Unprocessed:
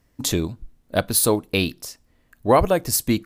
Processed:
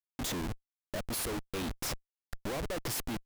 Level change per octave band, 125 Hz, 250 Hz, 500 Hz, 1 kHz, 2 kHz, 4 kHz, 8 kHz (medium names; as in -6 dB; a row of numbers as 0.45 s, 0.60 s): -14.5 dB, -15.0 dB, -18.5 dB, -18.0 dB, -12.0 dB, -12.0 dB, -14.5 dB